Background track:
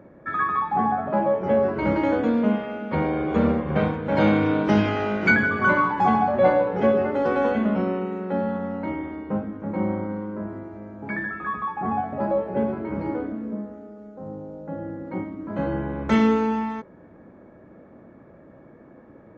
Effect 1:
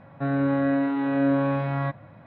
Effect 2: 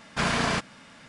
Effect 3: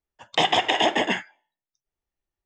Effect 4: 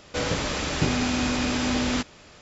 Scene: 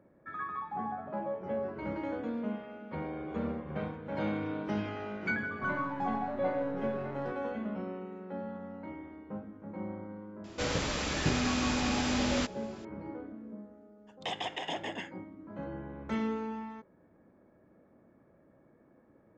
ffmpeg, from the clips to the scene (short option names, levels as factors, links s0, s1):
-filter_complex "[0:a]volume=0.188[s0];[1:a]aeval=exprs='if(lt(val(0),0),0.447*val(0),val(0))':c=same,atrim=end=2.26,asetpts=PTS-STARTPTS,volume=0.178,afade=t=in:d=0.004:c=hsin,afade=t=out:st=2.256:d=0.004:c=hsin,adelay=238581S[s1];[4:a]atrim=end=2.41,asetpts=PTS-STARTPTS,volume=0.531,afade=t=in:d=0.004:c=hsin,afade=t=out:st=2.406:d=0.004:c=hsin,adelay=10440[s2];[3:a]atrim=end=2.45,asetpts=PTS-STARTPTS,volume=0.158,afade=t=in:d=0.004:c=hsin,afade=t=out:st=2.446:d=0.004:c=hsin,adelay=13880[s3];[s0][s1][s2][s3]amix=inputs=4:normalize=0"